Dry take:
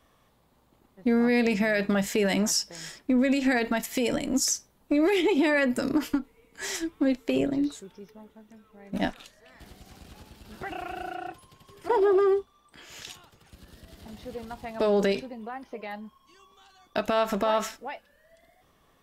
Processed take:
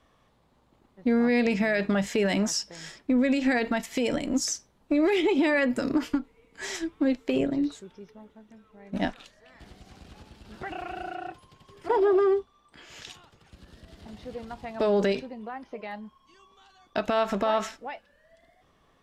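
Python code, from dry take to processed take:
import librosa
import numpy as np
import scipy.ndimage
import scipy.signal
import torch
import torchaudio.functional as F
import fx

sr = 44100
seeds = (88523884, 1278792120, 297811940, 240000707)

y = fx.air_absorb(x, sr, metres=52.0)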